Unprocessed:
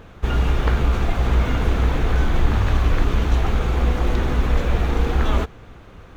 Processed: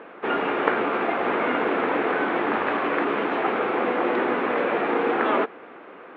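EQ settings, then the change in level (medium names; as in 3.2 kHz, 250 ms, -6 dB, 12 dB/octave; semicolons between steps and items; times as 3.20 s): high-pass 290 Hz 24 dB/octave; low-pass 2.5 kHz 24 dB/octave; +5.5 dB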